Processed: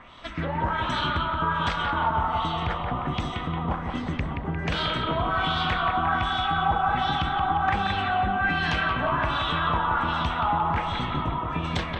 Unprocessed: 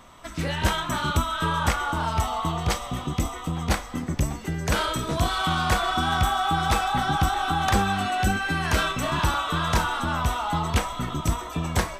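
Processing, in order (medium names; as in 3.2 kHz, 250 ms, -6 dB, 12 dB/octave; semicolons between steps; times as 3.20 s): compression, threshold -25 dBFS, peak gain reduction 9 dB; LFO low-pass sine 1.3 Hz 910–3800 Hz; bucket-brigade echo 176 ms, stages 4096, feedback 53%, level -5 dB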